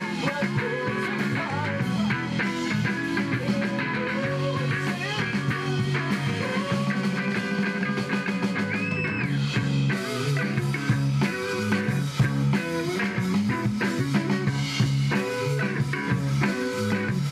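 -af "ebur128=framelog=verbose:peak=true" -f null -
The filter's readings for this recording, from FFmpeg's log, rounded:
Integrated loudness:
  I:         -25.7 LUFS
  Threshold: -35.7 LUFS
Loudness range:
  LRA:         1.1 LU
  Threshold: -45.6 LUFS
  LRA low:   -26.1 LUFS
  LRA high:  -25.0 LUFS
True peak:
  Peak:      -12.4 dBFS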